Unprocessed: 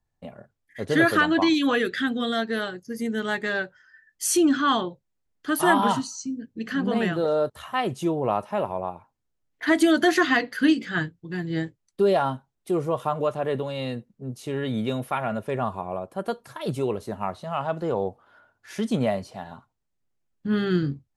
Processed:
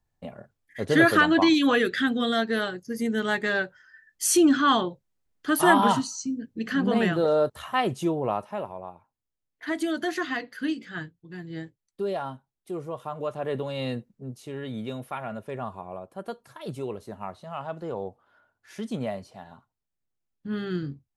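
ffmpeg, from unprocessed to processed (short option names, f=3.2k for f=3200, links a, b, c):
-af "volume=10.5dB,afade=t=out:st=7.8:d=0.95:silence=0.316228,afade=t=in:st=13.09:d=0.86:silence=0.334965,afade=t=out:st=13.95:d=0.51:silence=0.421697"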